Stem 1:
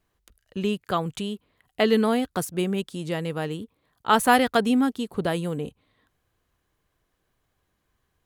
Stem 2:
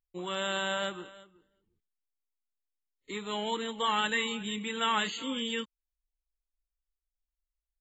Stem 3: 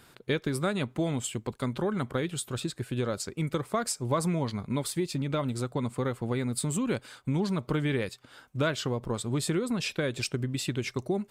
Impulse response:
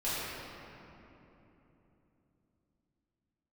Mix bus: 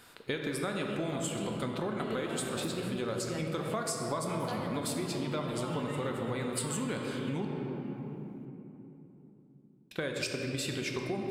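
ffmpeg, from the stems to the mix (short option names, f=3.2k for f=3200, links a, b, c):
-filter_complex "[0:a]acompressor=threshold=-25dB:ratio=6,adelay=200,volume=-8dB,asplit=2[a][b];[b]volume=-11.5dB[c];[1:a]adynamicsmooth=sensitivity=7.5:basefreq=2.6k,adelay=1750,volume=-18dB,asplit=2[d][e];[e]volume=-5dB[f];[2:a]lowshelf=f=280:g=-7.5,volume=-1dB,asplit=3[g][h][i];[g]atrim=end=7.45,asetpts=PTS-STARTPTS,afade=t=out:st=7.446:d=0.004:c=hsin[j];[h]atrim=start=7.45:end=9.91,asetpts=PTS-STARTPTS,volume=0[k];[i]atrim=start=9.91,asetpts=PTS-STARTPTS,afade=t=in:d=0.004:c=hsin[l];[j][k][l]concat=n=3:v=0:a=1,asplit=3[m][n][o];[n]volume=-7.5dB[p];[o]apad=whole_len=372694[q];[a][q]sidechaincompress=threshold=-41dB:ratio=8:attack=16:release=112[r];[3:a]atrim=start_sample=2205[s];[c][f][p]amix=inputs=3:normalize=0[t];[t][s]afir=irnorm=-1:irlink=0[u];[r][d][m][u]amix=inputs=4:normalize=0,acompressor=threshold=-31dB:ratio=4"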